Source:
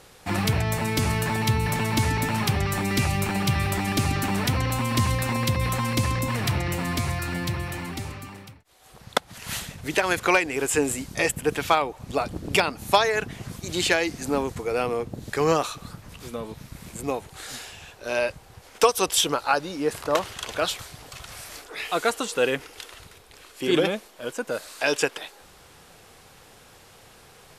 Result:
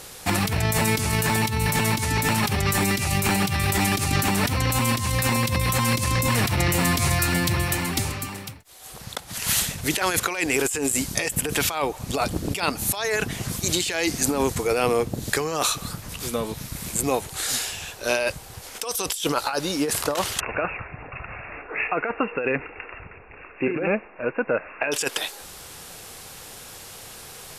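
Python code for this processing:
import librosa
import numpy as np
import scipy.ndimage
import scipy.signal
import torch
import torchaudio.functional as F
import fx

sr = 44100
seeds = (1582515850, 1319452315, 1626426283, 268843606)

y = fx.brickwall_lowpass(x, sr, high_hz=2800.0, at=(20.4, 24.92))
y = fx.high_shelf(y, sr, hz=4500.0, db=10.5)
y = fx.over_compress(y, sr, threshold_db=-26.0, ratio=-1.0)
y = F.gain(torch.from_numpy(y), 3.0).numpy()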